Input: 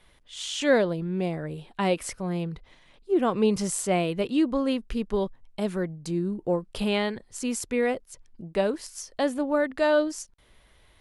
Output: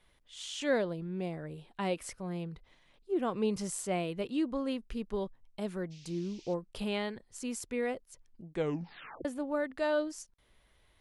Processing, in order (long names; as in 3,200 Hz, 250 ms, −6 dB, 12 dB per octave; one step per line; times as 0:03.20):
0:05.90–0:06.53: noise in a band 2,300–6,200 Hz −50 dBFS
0:08.48: tape stop 0.77 s
level −8.5 dB